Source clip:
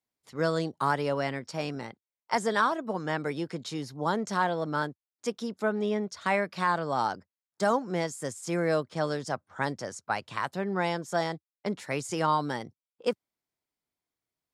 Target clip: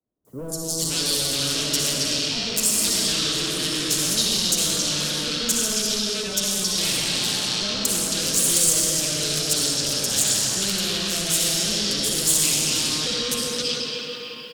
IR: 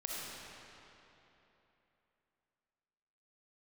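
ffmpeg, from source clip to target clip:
-filter_complex "[1:a]atrim=start_sample=2205[link_01];[0:a][link_01]afir=irnorm=-1:irlink=0,acrossover=split=140|330|3800[link_02][link_03][link_04][link_05];[link_02]acompressor=threshold=-51dB:ratio=4[link_06];[link_03]acompressor=threshold=-40dB:ratio=4[link_07];[link_04]acompressor=threshold=-37dB:ratio=4[link_08];[link_05]acompressor=threshold=-45dB:ratio=4[link_09];[link_06][link_07][link_08][link_09]amix=inputs=4:normalize=0,asplit=2[link_10][link_11];[link_11]aeval=exprs='0.106*sin(PI/2*6.31*val(0)/0.106)':channel_layout=same,volume=-9.5dB[link_12];[link_10][link_12]amix=inputs=2:normalize=0,equalizer=frequency=850:width=1.8:gain=-9.5,acrossover=split=980|5700[link_13][link_14][link_15];[link_15]adelay=250[link_16];[link_14]adelay=520[link_17];[link_13][link_17][link_16]amix=inputs=3:normalize=0,acrossover=split=120[link_18][link_19];[link_19]aexciter=amount=7.5:drive=6.2:freq=3000[link_20];[link_18][link_20]amix=inputs=2:normalize=0"

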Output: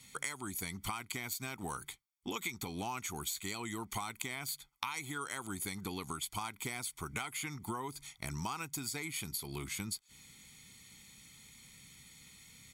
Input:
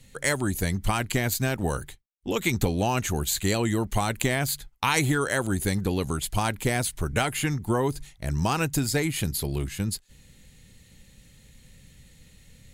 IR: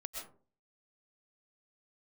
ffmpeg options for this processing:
-af "highpass=frequency=610:poles=1,aecho=1:1:0.9:0.71,acompressor=threshold=-36dB:ratio=10"

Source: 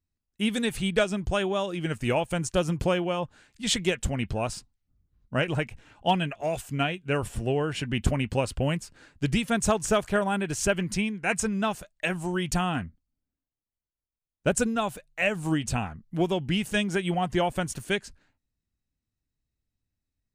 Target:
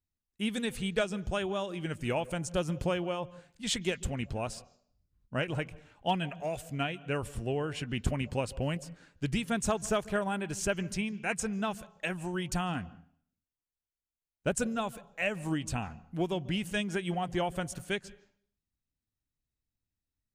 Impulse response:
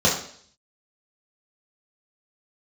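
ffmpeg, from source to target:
-filter_complex "[0:a]asplit=2[link_01][link_02];[1:a]atrim=start_sample=2205,lowpass=5700,adelay=140[link_03];[link_02][link_03]afir=irnorm=-1:irlink=0,volume=-39.5dB[link_04];[link_01][link_04]amix=inputs=2:normalize=0,volume=-6dB"

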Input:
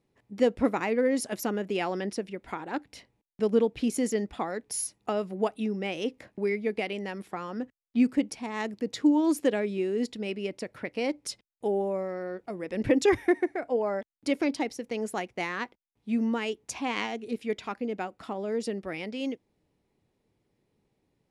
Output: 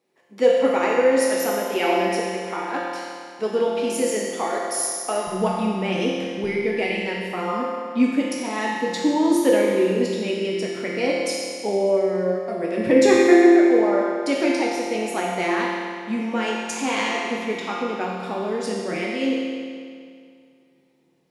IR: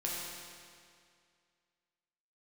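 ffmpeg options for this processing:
-filter_complex "[0:a]asetnsamples=nb_out_samples=441:pad=0,asendcmd='5.27 highpass f 71;6.44 highpass f 180',highpass=360[link_01];[1:a]atrim=start_sample=2205[link_02];[link_01][link_02]afir=irnorm=-1:irlink=0,volume=5.5dB"

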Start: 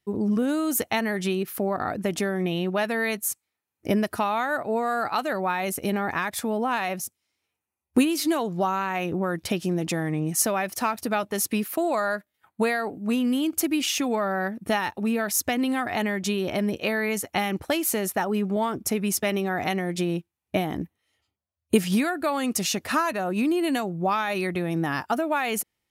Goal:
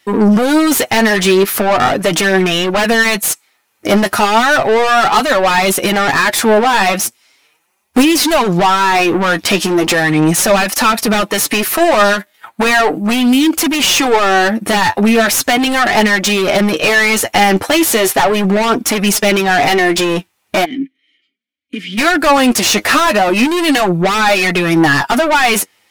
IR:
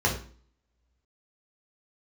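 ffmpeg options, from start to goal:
-filter_complex "[0:a]asplit=2[link_01][link_02];[link_02]highpass=frequency=720:poles=1,volume=32dB,asoftclip=type=tanh:threshold=-5dB[link_03];[link_01][link_03]amix=inputs=2:normalize=0,lowpass=frequency=7000:poles=1,volume=-6dB,flanger=delay=3.4:depth=7.2:regen=27:speed=0.37:shape=triangular,asplit=3[link_04][link_05][link_06];[link_04]afade=type=out:start_time=20.64:duration=0.02[link_07];[link_05]asplit=3[link_08][link_09][link_10];[link_08]bandpass=frequency=270:width_type=q:width=8,volume=0dB[link_11];[link_09]bandpass=frequency=2290:width_type=q:width=8,volume=-6dB[link_12];[link_10]bandpass=frequency=3010:width_type=q:width=8,volume=-9dB[link_13];[link_11][link_12][link_13]amix=inputs=3:normalize=0,afade=type=in:start_time=20.64:duration=0.02,afade=type=out:start_time=21.97:duration=0.02[link_14];[link_06]afade=type=in:start_time=21.97:duration=0.02[link_15];[link_07][link_14][link_15]amix=inputs=3:normalize=0,volume=5dB"

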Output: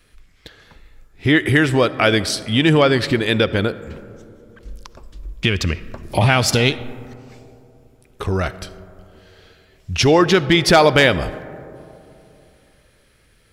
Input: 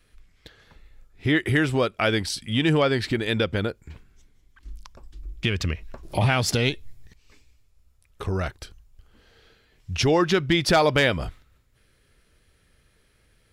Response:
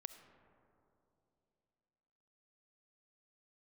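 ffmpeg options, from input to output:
-filter_complex "[0:a]asplit=2[link_01][link_02];[1:a]atrim=start_sample=2205,lowshelf=frequency=85:gain=-9[link_03];[link_02][link_03]afir=irnorm=-1:irlink=0,volume=4.5dB[link_04];[link_01][link_04]amix=inputs=2:normalize=0,volume=1.5dB"

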